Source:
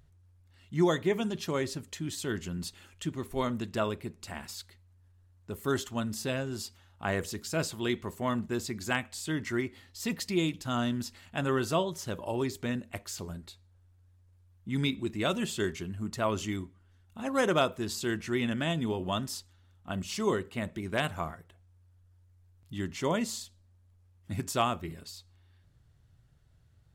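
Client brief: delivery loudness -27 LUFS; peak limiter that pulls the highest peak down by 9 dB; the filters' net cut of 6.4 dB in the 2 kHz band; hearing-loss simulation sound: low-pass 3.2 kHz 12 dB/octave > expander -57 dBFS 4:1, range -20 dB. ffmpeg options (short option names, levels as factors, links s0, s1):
-af "equalizer=f=2000:t=o:g=-8,alimiter=limit=0.0668:level=0:latency=1,lowpass=3200,agate=range=0.1:threshold=0.00141:ratio=4,volume=2.82"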